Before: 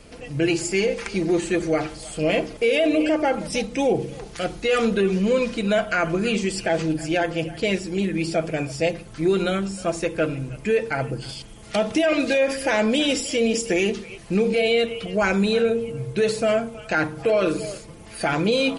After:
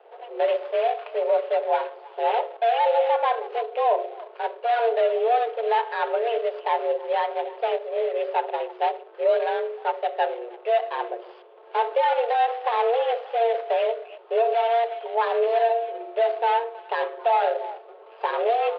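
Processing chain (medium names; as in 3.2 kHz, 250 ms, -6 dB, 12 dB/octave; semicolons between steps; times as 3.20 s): median filter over 25 samples; mistuned SSB +230 Hz 180–3400 Hz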